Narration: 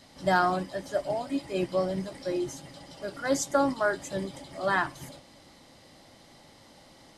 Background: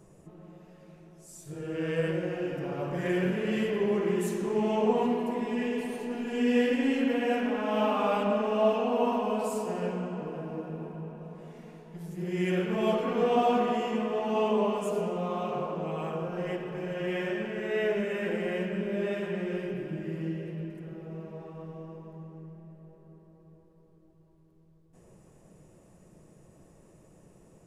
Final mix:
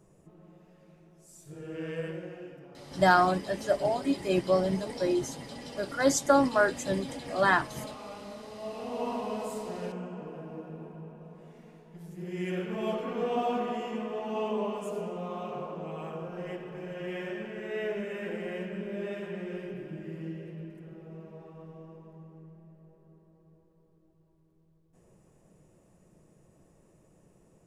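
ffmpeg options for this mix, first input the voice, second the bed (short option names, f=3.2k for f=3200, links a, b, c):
-filter_complex "[0:a]adelay=2750,volume=2.5dB[a];[1:a]volume=7dB,afade=t=out:st=1.8:d=0.89:silence=0.251189,afade=t=in:st=8.62:d=0.53:silence=0.251189[b];[a][b]amix=inputs=2:normalize=0"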